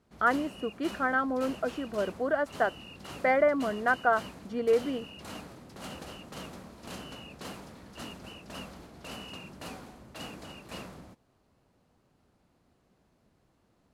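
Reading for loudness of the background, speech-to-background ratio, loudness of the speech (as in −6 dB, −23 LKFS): −44.5 LKFS, 15.5 dB, −29.0 LKFS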